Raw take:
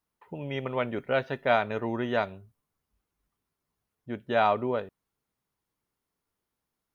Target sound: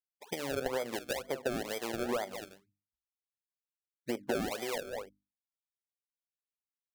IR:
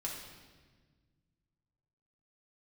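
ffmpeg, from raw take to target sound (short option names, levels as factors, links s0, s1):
-filter_complex "[0:a]asplit=2[s0][s1];[s1]acrusher=bits=5:mix=0:aa=0.000001,volume=0.335[s2];[s0][s2]amix=inputs=2:normalize=0,alimiter=limit=0.133:level=0:latency=1,tiltshelf=f=1200:g=6,afftfilt=real='re*gte(hypot(re,im),0.00501)':imag='im*gte(hypot(re,im),0.00501)':win_size=1024:overlap=0.75,highpass=230,equalizer=f=320:t=q:w=4:g=3,equalizer=f=510:t=q:w=4:g=8,equalizer=f=790:t=q:w=4:g=10,equalizer=f=2000:t=q:w=4:g=5,lowpass=f=3800:w=0.5412,lowpass=f=3800:w=1.3066,asplit=2[s3][s4];[s4]aecho=0:1:198:0.158[s5];[s3][s5]amix=inputs=2:normalize=0,acrusher=samples=31:mix=1:aa=0.000001:lfo=1:lforange=31:lforate=2.1,bandreject=f=50:t=h:w=6,bandreject=f=100:t=h:w=6,bandreject=f=150:t=h:w=6,bandreject=f=200:t=h:w=6,bandreject=f=250:t=h:w=6,bandreject=f=300:t=h:w=6,acompressor=threshold=0.0251:ratio=16,acrossover=split=1800[s6][s7];[s6]aeval=exprs='val(0)*(1-0.5/2+0.5/2*cos(2*PI*1.4*n/s))':c=same[s8];[s7]aeval=exprs='val(0)*(1-0.5/2-0.5/2*cos(2*PI*1.4*n/s))':c=same[s9];[s8][s9]amix=inputs=2:normalize=0,volume=1.41"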